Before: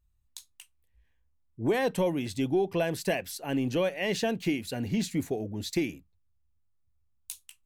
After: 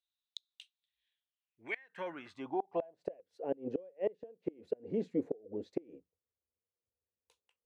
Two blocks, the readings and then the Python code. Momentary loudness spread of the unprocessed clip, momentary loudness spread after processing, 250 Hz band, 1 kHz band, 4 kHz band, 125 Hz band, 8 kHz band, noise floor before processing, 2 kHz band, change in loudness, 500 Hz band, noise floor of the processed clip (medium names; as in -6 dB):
16 LU, 15 LU, -11.5 dB, -7.5 dB, under -15 dB, -18.5 dB, under -25 dB, -70 dBFS, -12.0 dB, -10.0 dB, -8.0 dB, under -85 dBFS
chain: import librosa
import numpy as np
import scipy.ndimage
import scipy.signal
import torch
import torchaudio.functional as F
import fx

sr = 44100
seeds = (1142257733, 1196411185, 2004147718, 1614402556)

y = fx.filter_sweep_bandpass(x, sr, from_hz=3700.0, to_hz=480.0, start_s=1.17, end_s=3.23, q=6.9)
y = fx.high_shelf(y, sr, hz=10000.0, db=-11.0)
y = fx.gate_flip(y, sr, shuts_db=-34.0, range_db=-28)
y = fx.dynamic_eq(y, sr, hz=300.0, q=0.81, threshold_db=-58.0, ratio=4.0, max_db=4)
y = y * librosa.db_to_amplitude(9.5)